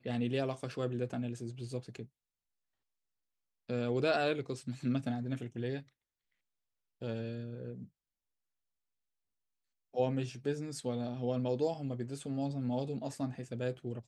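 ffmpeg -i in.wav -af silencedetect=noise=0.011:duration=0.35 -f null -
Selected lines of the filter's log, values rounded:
silence_start: 2.03
silence_end: 3.70 | silence_duration: 1.67
silence_start: 5.80
silence_end: 7.02 | silence_duration: 1.22
silence_start: 7.82
silence_end: 9.96 | silence_duration: 2.14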